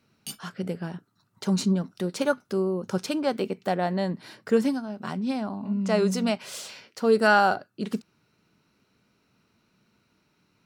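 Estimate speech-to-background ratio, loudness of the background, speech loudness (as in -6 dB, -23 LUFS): 14.5 dB, -41.0 LUFS, -26.5 LUFS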